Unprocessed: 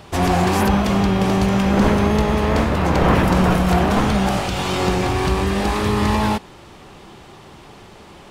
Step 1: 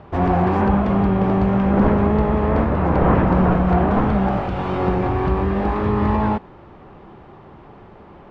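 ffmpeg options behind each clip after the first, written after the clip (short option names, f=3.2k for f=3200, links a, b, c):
-af "lowpass=1.4k"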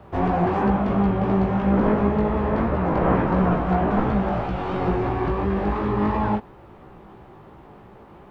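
-filter_complex "[0:a]acrossover=split=150[a][b];[a]alimiter=limit=-20dB:level=0:latency=1:release=281[c];[c][b]amix=inputs=2:normalize=0,acrusher=bits=11:mix=0:aa=0.000001,flanger=delay=15:depth=4.4:speed=2.9"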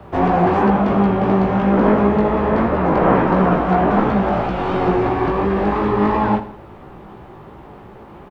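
-filter_complex "[0:a]acrossover=split=170[a][b];[a]asoftclip=type=tanh:threshold=-33.5dB[c];[c][b]amix=inputs=2:normalize=0,aecho=1:1:79|158|237|316:0.2|0.0838|0.0352|0.0148,volume=6.5dB"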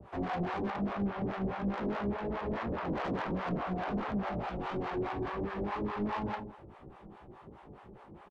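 -filter_complex "[0:a]asoftclip=type=tanh:threshold=-18dB,acrossover=split=560[a][b];[a]aeval=exprs='val(0)*(1-1/2+1/2*cos(2*PI*4.8*n/s))':c=same[c];[b]aeval=exprs='val(0)*(1-1/2-1/2*cos(2*PI*4.8*n/s))':c=same[d];[c][d]amix=inputs=2:normalize=0,aresample=22050,aresample=44100,volume=-8.5dB"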